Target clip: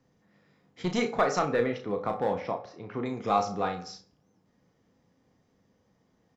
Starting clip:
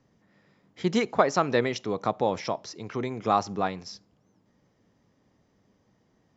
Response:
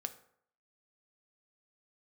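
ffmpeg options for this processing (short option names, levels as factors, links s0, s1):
-filter_complex "[0:a]asettb=1/sr,asplit=3[s0][s1][s2];[s0]atrim=end=1.454[s3];[s1]atrim=start=1.45:end=3.06,asetpts=PTS-STARTPTS,afade=t=in:d=0.004:c=qsin,afade=t=out:st=1.606:d=0.004:c=qsin,lowpass=2200[s4];[s2]atrim=start=3.056[s5];[s3][s4]acrossfade=d=0.004:c1=hsin:c2=qsin[s6];[s6][s5]acrossfade=d=0.004:c1=qsin:c2=hsin,acrossover=split=850[s7][s8];[s7]asoftclip=type=hard:threshold=0.0891[s9];[s9][s8]amix=inputs=2:normalize=0,aecho=1:1:34|63:0.447|0.141[s10];[1:a]atrim=start_sample=2205,afade=t=out:st=0.37:d=0.01,atrim=end_sample=16758[s11];[s10][s11]afir=irnorm=-1:irlink=0,volume=0.891"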